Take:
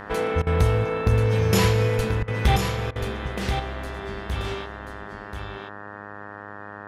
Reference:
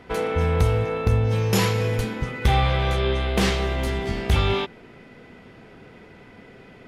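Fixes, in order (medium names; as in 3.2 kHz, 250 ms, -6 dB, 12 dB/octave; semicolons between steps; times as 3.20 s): de-hum 102.5 Hz, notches 18; interpolate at 0.42/2.23/2.91 s, 46 ms; inverse comb 1034 ms -6.5 dB; trim 0 dB, from 2.56 s +10 dB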